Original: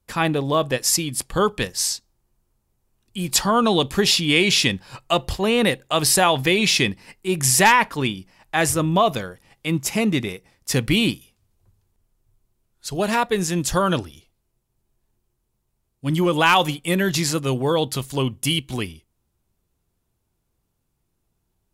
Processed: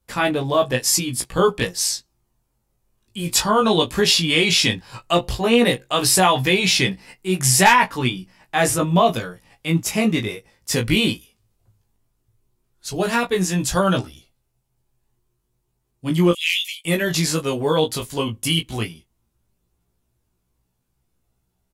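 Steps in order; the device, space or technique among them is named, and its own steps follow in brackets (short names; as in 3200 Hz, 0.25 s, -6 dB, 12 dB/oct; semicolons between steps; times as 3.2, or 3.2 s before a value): 16.31–16.85 steep high-pass 2000 Hz 96 dB/oct; double-tracked vocal (doubler 17 ms -8 dB; chorus 0.14 Hz, delay 15.5 ms, depth 3.5 ms); gain +3.5 dB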